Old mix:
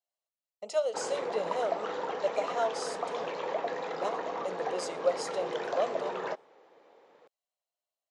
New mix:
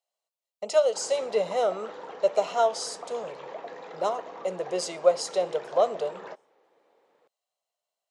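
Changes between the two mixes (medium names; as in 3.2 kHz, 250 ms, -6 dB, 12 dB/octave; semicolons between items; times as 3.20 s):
speech +7.5 dB; background -6.5 dB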